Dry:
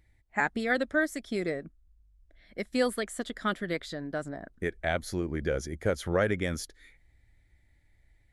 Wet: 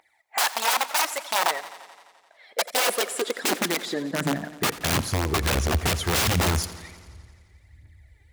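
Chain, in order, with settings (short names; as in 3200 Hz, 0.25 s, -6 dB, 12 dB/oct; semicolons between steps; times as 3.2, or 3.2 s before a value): phaser 1.4 Hz, delay 2.6 ms, feedback 67%; wrapped overs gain 24 dB; high-pass sweep 790 Hz -> 77 Hz, 2.27–5.47; warbling echo 86 ms, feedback 71%, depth 70 cents, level -16.5 dB; gain +6 dB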